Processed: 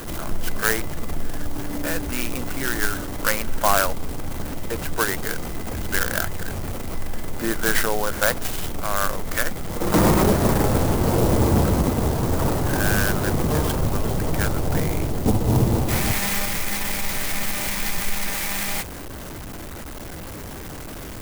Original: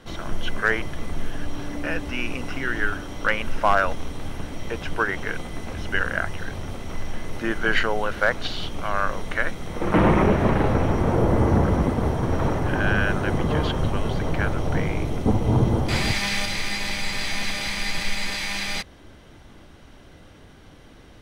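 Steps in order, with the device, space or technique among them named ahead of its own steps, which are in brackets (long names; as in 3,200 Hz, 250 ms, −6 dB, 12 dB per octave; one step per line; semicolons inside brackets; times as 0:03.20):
early CD player with a faulty converter (converter with a step at zero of −30 dBFS; converter with an unsteady clock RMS 0.076 ms)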